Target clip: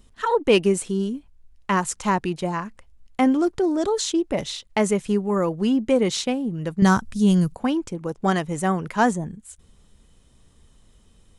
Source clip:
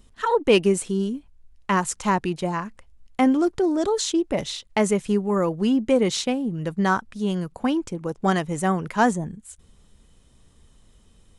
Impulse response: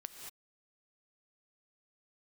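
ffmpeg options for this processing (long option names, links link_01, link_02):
-filter_complex "[0:a]asettb=1/sr,asplit=3[link_01][link_02][link_03];[link_01]atrim=end=6.824[link_04];[link_02]atrim=start=6.82:end=7.55,asetpts=PTS-STARTPTS,afade=type=in:duration=0.004:curve=qsin,afade=type=out:start_time=0.726:duration=0.004:curve=qsin,bass=frequency=250:gain=12,treble=frequency=4000:gain=11[link_05];[link_03]atrim=start=7.546[link_06];[link_04][link_05]acrossfade=duration=0.004:curve1=hsin:curve2=qsin[link_07];[link_07][link_06]acrossfade=duration=0.004:curve1=qsin:curve2=hsin"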